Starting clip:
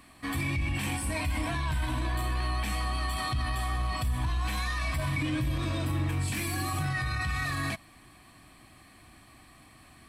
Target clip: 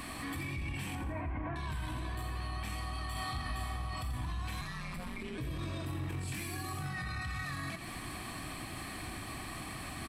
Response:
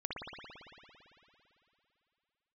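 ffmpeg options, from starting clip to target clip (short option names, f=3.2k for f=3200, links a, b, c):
-filter_complex "[0:a]asettb=1/sr,asplit=3[a][b][c];[a]atrim=end=0.954[d];[b]atrim=start=0.95:end=1.56,asetpts=PTS-STARTPTS,afade=t=in:d=0.004:c=qsin,afade=t=out:st=0.606:d=0.004:c=qsin,lowpass=f=1.8k:w=0.5412,lowpass=f=1.8k:w=1.3066[e];[c]atrim=start=1.556[f];[d][e]acrossfade=d=0.004:c1=hsin:c2=qsin[g];[g][f]acrossfade=d=0.004:c1=qsin:c2=hsin,alimiter=level_in=20dB:limit=-24dB:level=0:latency=1:release=135,volume=-20dB,asettb=1/sr,asplit=3[h][i][j];[h]atrim=end=3.114[k];[i]atrim=start=3.11:end=3.76,asetpts=PTS-STARTPTS,afade=t=in:d=0.004:c=qsin,afade=t=out:st=0.646:d=0.004:c=qsin,asplit=2[l][m];[m]adelay=37,volume=-3dB[n];[l][n]amix=inputs=2:normalize=0,atrim=end_sample=28665[o];[j]atrim=start=3.756[p];[k][o]acrossfade=d=0.004:c1=hsin:c2=qsin[q];[q][p]acrossfade=d=0.004:c1=qsin:c2=hsin,asettb=1/sr,asplit=3[r][s][t];[r]atrim=end=4.614[u];[s]atrim=start=4.61:end=5.38,asetpts=PTS-STARTPTS,afade=t=in:d=0.004:c=qsin,afade=t=out:st=0.766:d=0.004:c=qsin,aeval=exprs='val(0)*sin(2*PI*92*n/s)':c=same[v];[t]atrim=start=5.376[w];[u][v]acrossfade=d=0.004:c1=hsin:c2=qsin[x];[x][w]acrossfade=d=0.004:c1=qsin:c2=hsin,asplit=6[y][z][aa][ab][ac][ad];[z]adelay=86,afreqshift=39,volume=-9dB[ae];[aa]adelay=172,afreqshift=78,volume=-16.3dB[af];[ab]adelay=258,afreqshift=117,volume=-23.7dB[ag];[ac]adelay=344,afreqshift=156,volume=-31dB[ah];[ad]adelay=430,afreqshift=195,volume=-38.3dB[ai];[y][ae][af][ag][ah][ai]amix=inputs=6:normalize=0,volume=12dB"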